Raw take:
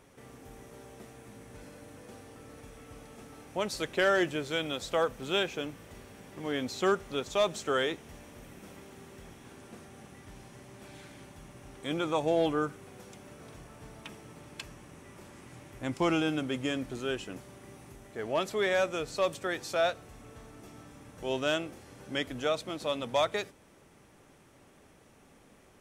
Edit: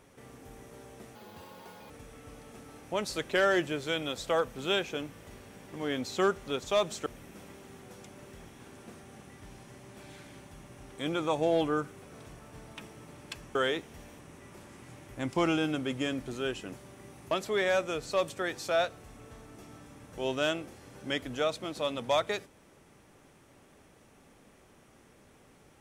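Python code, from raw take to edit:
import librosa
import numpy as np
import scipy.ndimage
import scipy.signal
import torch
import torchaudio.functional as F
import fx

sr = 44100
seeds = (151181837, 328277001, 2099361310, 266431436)

y = fx.edit(x, sr, fx.speed_span(start_s=1.15, length_s=1.39, speed=1.85),
    fx.move(start_s=7.7, length_s=0.64, to_s=14.83),
    fx.move(start_s=12.91, length_s=0.43, to_s=9.1),
    fx.cut(start_s=17.95, length_s=0.41), tone=tone)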